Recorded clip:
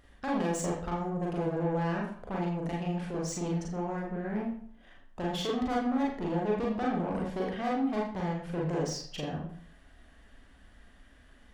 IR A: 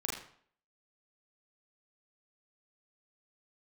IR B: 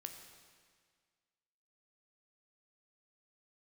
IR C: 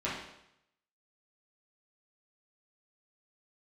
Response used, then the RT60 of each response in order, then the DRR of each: A; 0.55, 1.8, 0.80 seconds; −3.5, 4.5, −9.0 decibels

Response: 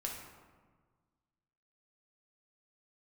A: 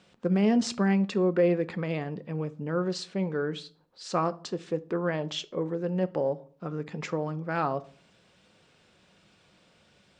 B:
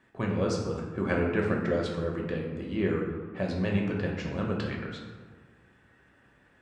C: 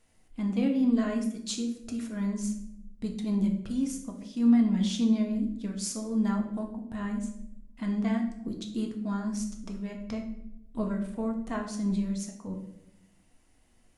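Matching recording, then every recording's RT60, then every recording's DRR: B; 0.50, 1.5, 0.80 seconds; 11.0, −1.5, 1.5 decibels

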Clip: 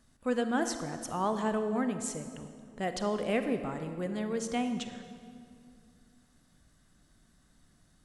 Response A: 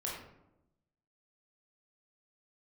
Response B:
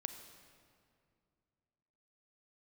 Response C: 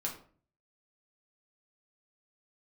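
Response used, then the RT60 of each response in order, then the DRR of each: B; 0.90, 2.3, 0.45 seconds; −4.5, 7.5, −1.5 decibels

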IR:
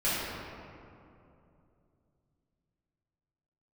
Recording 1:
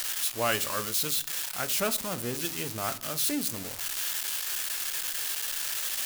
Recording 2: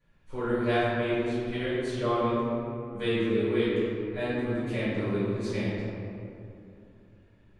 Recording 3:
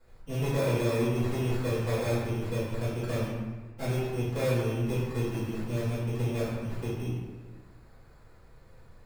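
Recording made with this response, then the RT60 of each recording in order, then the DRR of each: 2; 0.50, 2.7, 1.4 seconds; 11.5, −12.0, −13.5 decibels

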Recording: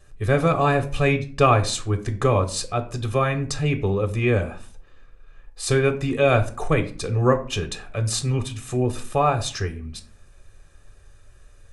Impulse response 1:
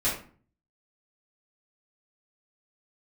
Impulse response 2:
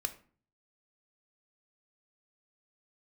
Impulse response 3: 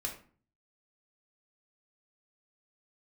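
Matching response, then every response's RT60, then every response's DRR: 2; 0.45, 0.45, 0.45 seconds; −9.5, 8.0, 0.0 decibels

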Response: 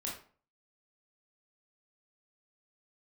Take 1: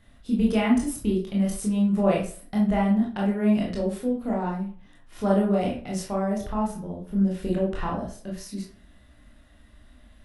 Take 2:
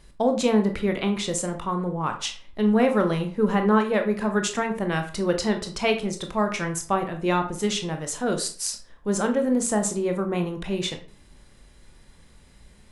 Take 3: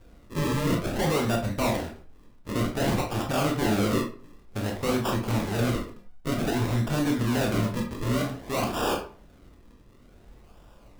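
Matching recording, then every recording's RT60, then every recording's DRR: 1; 0.45, 0.45, 0.45 seconds; −3.5, 5.0, 0.5 decibels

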